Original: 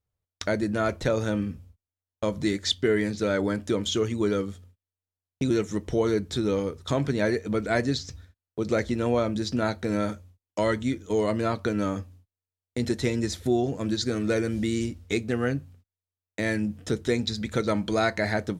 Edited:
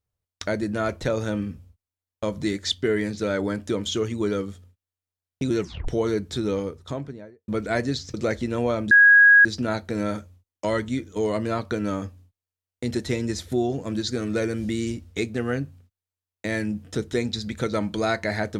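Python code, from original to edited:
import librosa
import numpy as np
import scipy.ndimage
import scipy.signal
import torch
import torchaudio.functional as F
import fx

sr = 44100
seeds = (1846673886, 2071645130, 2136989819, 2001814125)

y = fx.studio_fade_out(x, sr, start_s=6.49, length_s=0.99)
y = fx.edit(y, sr, fx.tape_stop(start_s=5.61, length_s=0.27),
    fx.cut(start_s=8.14, length_s=0.48),
    fx.insert_tone(at_s=9.39, length_s=0.54, hz=1650.0, db=-9.5), tone=tone)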